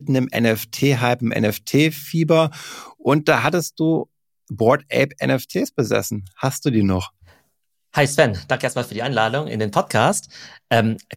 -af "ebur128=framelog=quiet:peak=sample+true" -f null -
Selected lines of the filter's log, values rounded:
Integrated loudness:
  I:         -19.7 LUFS
  Threshold: -30.2 LUFS
Loudness range:
  LRA:         2.6 LU
  Threshold: -40.4 LUFS
  LRA low:   -21.6 LUFS
  LRA high:  -19.0 LUFS
Sample peak:
  Peak:       -2.2 dBFS
True peak:
  Peak:       -2.1 dBFS